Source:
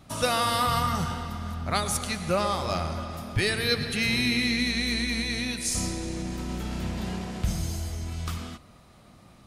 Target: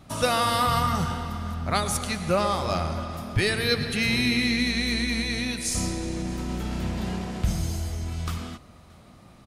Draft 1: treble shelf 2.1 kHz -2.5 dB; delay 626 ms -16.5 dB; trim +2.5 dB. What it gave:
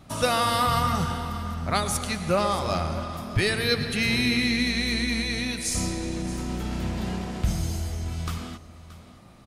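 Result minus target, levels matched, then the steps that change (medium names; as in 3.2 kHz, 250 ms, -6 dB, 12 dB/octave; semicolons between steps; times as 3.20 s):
echo-to-direct +10 dB
change: delay 626 ms -26.5 dB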